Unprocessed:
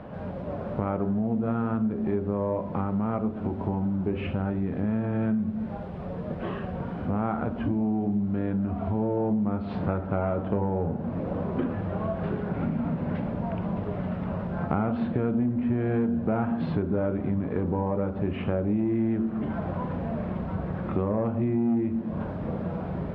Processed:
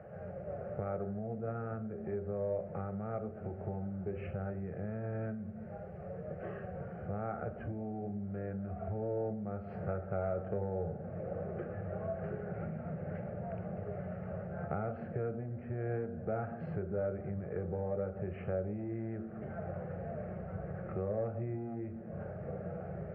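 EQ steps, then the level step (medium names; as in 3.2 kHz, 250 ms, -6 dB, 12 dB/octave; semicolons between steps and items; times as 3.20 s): high-pass 89 Hz; treble shelf 2.4 kHz -11 dB; static phaser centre 990 Hz, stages 6; -5.0 dB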